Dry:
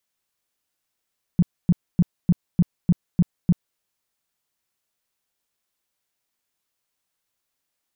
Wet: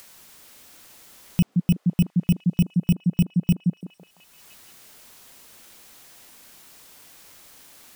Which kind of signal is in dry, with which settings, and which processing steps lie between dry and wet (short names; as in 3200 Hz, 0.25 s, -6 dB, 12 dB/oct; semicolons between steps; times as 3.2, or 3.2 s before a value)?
tone bursts 175 Hz, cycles 6, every 0.30 s, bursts 8, -11.5 dBFS
FFT order left unsorted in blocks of 16 samples; upward compressor, threshold -25 dBFS; delay with a stepping band-pass 0.169 s, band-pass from 220 Hz, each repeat 0.7 oct, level -1.5 dB